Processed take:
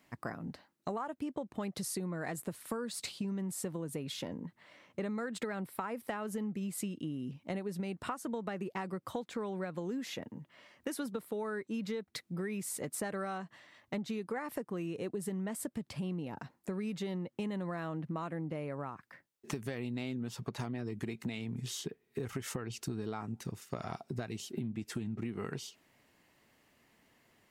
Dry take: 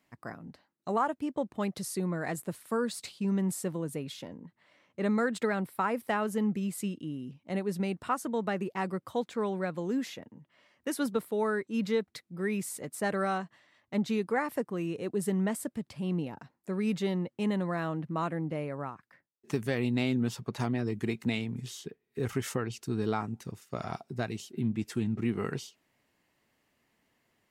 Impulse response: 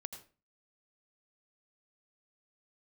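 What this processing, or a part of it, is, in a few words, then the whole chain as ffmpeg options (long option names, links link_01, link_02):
serial compression, leveller first: -af "acompressor=threshold=-32dB:ratio=2,acompressor=threshold=-41dB:ratio=5,volume=5.5dB"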